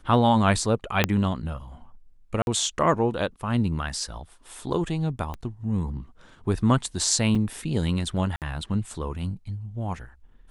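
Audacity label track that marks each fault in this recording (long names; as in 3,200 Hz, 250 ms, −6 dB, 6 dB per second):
1.040000	1.040000	click −4 dBFS
2.420000	2.470000	drop-out 51 ms
5.340000	5.340000	click −21 dBFS
7.350000	7.350000	drop-out 4.8 ms
8.360000	8.420000	drop-out 58 ms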